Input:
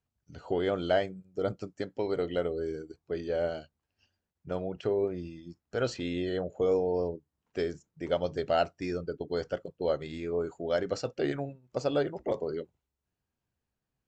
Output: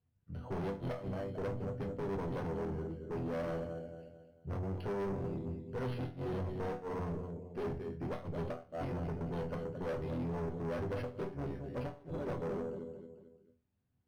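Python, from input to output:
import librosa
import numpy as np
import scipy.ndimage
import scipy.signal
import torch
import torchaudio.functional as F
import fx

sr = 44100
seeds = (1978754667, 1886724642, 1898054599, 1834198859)

p1 = fx.octave_divider(x, sr, octaves=1, level_db=-5.0)
p2 = fx.peak_eq(p1, sr, hz=120.0, db=14.0, octaves=3.0)
p3 = p2 + fx.echo_feedback(p2, sr, ms=222, feedback_pct=40, wet_db=-11, dry=0)
p4 = fx.clip_asym(p3, sr, top_db=-27.5, bottom_db=-14.0)
p5 = fx.hum_notches(p4, sr, base_hz=60, count=6)
p6 = fx.gate_flip(p5, sr, shuts_db=-15.0, range_db=-31)
p7 = fx.resonator_bank(p6, sr, root=40, chord='minor', decay_s=0.29)
p8 = 10.0 ** (-40.0 / 20.0) * np.tanh(p7 / 10.0 ** (-40.0 / 20.0))
p9 = np.interp(np.arange(len(p8)), np.arange(len(p8))[::6], p8[::6])
y = F.gain(torch.from_numpy(p9), 6.5).numpy()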